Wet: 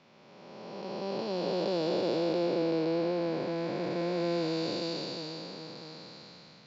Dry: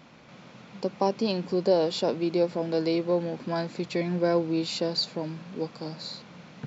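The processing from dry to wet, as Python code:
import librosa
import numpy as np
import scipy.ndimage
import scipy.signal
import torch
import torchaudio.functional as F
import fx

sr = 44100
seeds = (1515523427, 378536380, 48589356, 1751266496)

y = fx.spec_blur(x, sr, span_ms=948.0)
y = scipy.signal.sosfilt(scipy.signal.butter(4, 6400.0, 'lowpass', fs=sr, output='sos'), y)
y = fx.low_shelf(y, sr, hz=170.0, db=-12.0)
y = fx.band_widen(y, sr, depth_pct=40)
y = y * 10.0 ** (2.5 / 20.0)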